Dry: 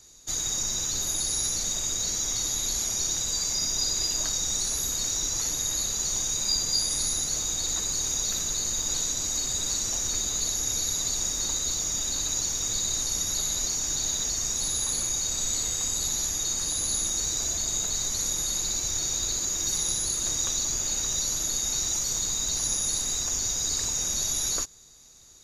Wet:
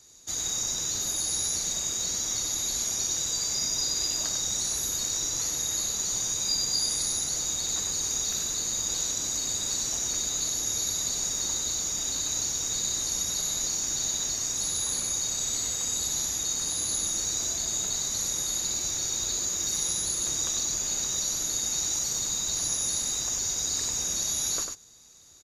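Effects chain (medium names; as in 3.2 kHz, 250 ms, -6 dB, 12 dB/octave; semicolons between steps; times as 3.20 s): high-pass 79 Hz 6 dB/octave; delay 97 ms -5.5 dB; trim -2 dB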